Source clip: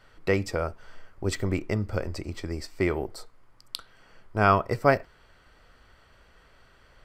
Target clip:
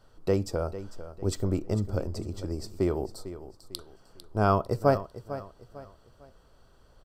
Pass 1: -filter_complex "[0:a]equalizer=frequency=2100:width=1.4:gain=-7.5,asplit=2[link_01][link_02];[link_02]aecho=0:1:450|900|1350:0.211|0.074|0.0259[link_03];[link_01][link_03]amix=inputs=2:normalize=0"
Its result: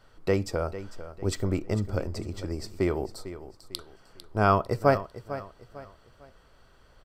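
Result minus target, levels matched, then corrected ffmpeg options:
2,000 Hz band +5.5 dB
-filter_complex "[0:a]equalizer=frequency=2100:width=1.4:gain=-18,asplit=2[link_01][link_02];[link_02]aecho=0:1:450|900|1350:0.211|0.074|0.0259[link_03];[link_01][link_03]amix=inputs=2:normalize=0"

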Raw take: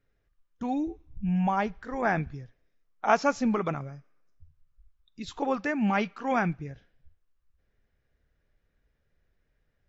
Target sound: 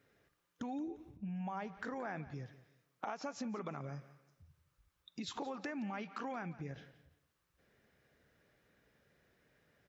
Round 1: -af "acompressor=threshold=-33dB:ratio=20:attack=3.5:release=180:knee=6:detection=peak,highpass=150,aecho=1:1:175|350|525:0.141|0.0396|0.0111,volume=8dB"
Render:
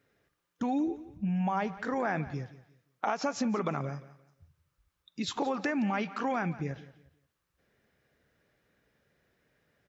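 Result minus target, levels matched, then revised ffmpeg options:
downward compressor: peak gain reduction −11.5 dB
-af "acompressor=threshold=-45dB:ratio=20:attack=3.5:release=180:knee=6:detection=peak,highpass=150,aecho=1:1:175|350|525:0.141|0.0396|0.0111,volume=8dB"

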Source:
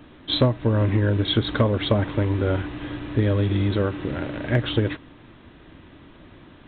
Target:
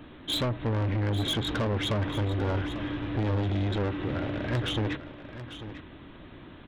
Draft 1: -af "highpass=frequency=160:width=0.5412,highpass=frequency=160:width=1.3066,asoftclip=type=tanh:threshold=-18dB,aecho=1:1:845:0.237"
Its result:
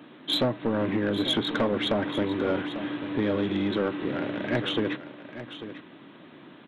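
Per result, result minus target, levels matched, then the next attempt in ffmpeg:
125 Hz band −10.0 dB; soft clipping: distortion −5 dB
-af "asoftclip=type=tanh:threshold=-18dB,aecho=1:1:845:0.237"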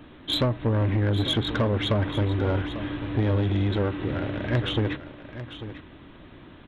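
soft clipping: distortion −6 dB
-af "asoftclip=type=tanh:threshold=-25dB,aecho=1:1:845:0.237"

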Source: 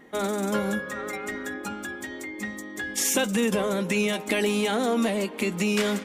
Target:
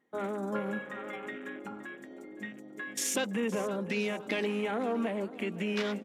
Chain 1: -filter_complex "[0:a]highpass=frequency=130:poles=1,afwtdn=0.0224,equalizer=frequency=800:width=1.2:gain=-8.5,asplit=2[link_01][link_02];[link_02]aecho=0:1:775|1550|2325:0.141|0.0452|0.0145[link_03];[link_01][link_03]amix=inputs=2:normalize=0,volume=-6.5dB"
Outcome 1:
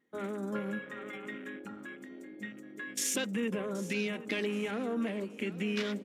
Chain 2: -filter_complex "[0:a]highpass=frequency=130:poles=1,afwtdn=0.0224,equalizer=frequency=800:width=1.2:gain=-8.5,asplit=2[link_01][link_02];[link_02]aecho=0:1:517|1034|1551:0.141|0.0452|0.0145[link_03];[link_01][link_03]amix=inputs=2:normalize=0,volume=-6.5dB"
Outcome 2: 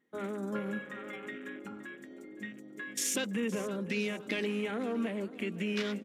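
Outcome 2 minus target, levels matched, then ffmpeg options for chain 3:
1,000 Hz band −4.5 dB
-filter_complex "[0:a]highpass=frequency=130:poles=1,afwtdn=0.0224,asplit=2[link_01][link_02];[link_02]aecho=0:1:517|1034|1551:0.141|0.0452|0.0145[link_03];[link_01][link_03]amix=inputs=2:normalize=0,volume=-6.5dB"

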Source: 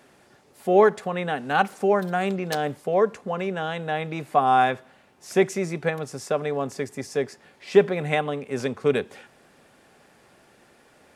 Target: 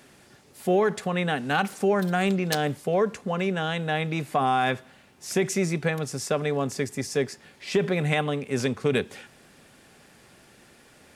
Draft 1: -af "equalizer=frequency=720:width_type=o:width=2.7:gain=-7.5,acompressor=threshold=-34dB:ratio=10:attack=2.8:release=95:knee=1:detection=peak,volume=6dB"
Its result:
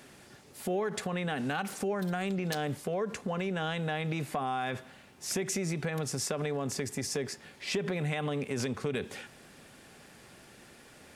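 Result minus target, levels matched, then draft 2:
downward compressor: peak gain reduction +10 dB
-af "equalizer=frequency=720:width_type=o:width=2.7:gain=-7.5,acompressor=threshold=-23dB:ratio=10:attack=2.8:release=95:knee=1:detection=peak,volume=6dB"

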